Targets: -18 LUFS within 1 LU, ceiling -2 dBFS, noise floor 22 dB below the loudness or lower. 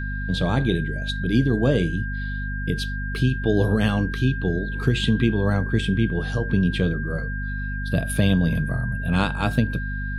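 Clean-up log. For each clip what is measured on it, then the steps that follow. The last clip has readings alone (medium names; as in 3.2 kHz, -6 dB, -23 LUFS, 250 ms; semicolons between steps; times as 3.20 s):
hum 50 Hz; highest harmonic 250 Hz; hum level -26 dBFS; steady tone 1.6 kHz; tone level -32 dBFS; loudness -23.5 LUFS; peak level -5.0 dBFS; loudness target -18.0 LUFS
-> de-hum 50 Hz, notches 5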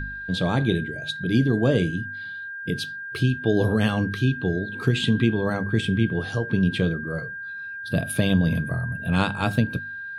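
hum not found; steady tone 1.6 kHz; tone level -32 dBFS
-> band-stop 1.6 kHz, Q 30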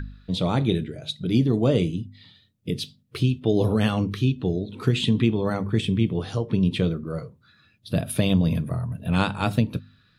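steady tone not found; loudness -24.5 LUFS; peak level -6.5 dBFS; loudness target -18.0 LUFS
-> trim +6.5 dB; peak limiter -2 dBFS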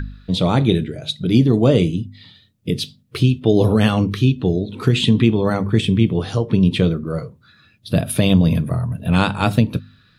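loudness -18.0 LUFS; peak level -2.0 dBFS; noise floor -55 dBFS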